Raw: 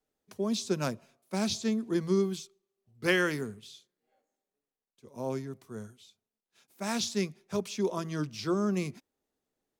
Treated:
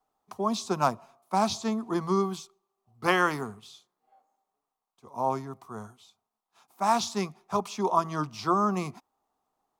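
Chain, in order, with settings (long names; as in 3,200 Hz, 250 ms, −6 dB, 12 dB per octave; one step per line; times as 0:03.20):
flat-topped bell 940 Hz +15.5 dB 1.1 octaves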